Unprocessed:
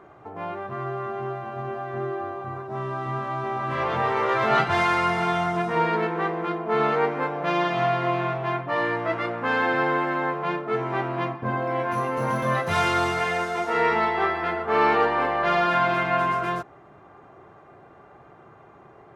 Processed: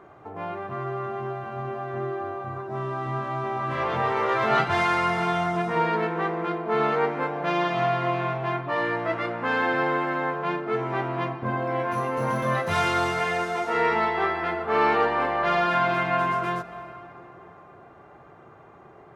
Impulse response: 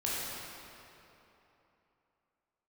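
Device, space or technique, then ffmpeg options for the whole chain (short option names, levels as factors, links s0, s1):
ducked reverb: -filter_complex "[0:a]asplit=3[s0][s1][s2];[1:a]atrim=start_sample=2205[s3];[s1][s3]afir=irnorm=-1:irlink=0[s4];[s2]apad=whole_len=844547[s5];[s4][s5]sidechaincompress=threshold=0.0355:ratio=8:attack=6:release=313,volume=0.178[s6];[s0][s6]amix=inputs=2:normalize=0,volume=0.841"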